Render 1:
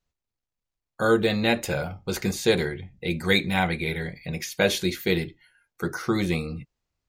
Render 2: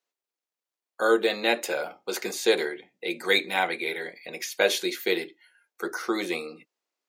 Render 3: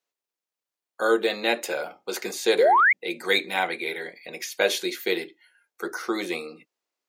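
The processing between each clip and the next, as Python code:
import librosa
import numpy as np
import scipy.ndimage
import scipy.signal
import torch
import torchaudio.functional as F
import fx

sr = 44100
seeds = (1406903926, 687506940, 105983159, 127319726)

y1 = scipy.signal.sosfilt(scipy.signal.butter(4, 320.0, 'highpass', fs=sr, output='sos'), x)
y2 = fx.spec_paint(y1, sr, seeds[0], shape='rise', start_s=2.58, length_s=0.35, low_hz=410.0, high_hz=2300.0, level_db=-17.0)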